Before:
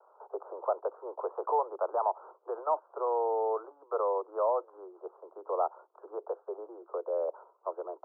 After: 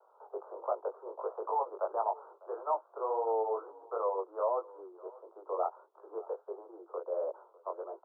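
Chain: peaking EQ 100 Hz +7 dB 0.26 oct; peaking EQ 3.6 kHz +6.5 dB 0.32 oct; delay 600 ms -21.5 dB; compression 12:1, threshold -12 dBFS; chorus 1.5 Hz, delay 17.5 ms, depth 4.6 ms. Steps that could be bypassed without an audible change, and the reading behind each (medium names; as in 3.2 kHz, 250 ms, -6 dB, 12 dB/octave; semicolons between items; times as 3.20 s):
peaking EQ 100 Hz: input has nothing below 300 Hz; peaking EQ 3.6 kHz: input has nothing above 1.4 kHz; compression, threshold -12 dBFS: peak at its input -15.5 dBFS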